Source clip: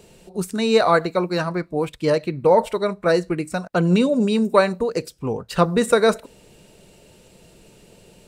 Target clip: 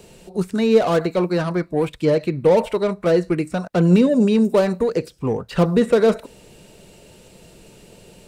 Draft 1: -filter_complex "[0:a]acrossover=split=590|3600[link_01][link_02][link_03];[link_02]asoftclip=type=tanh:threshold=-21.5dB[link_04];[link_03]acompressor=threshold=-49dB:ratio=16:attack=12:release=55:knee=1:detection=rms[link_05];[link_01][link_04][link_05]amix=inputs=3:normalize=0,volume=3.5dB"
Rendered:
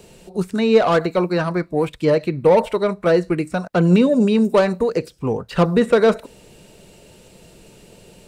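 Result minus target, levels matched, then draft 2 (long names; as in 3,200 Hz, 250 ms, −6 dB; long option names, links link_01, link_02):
soft clipping: distortion −5 dB
-filter_complex "[0:a]acrossover=split=590|3600[link_01][link_02][link_03];[link_02]asoftclip=type=tanh:threshold=-29.5dB[link_04];[link_03]acompressor=threshold=-49dB:ratio=16:attack=12:release=55:knee=1:detection=rms[link_05];[link_01][link_04][link_05]amix=inputs=3:normalize=0,volume=3.5dB"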